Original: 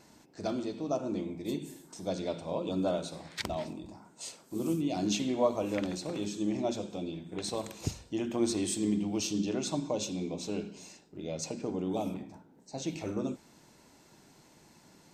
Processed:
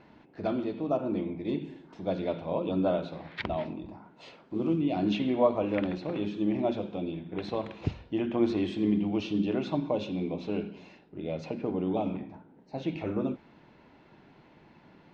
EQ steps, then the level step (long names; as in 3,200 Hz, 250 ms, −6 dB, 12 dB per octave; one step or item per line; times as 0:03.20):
low-pass filter 3,100 Hz 24 dB per octave
+3.5 dB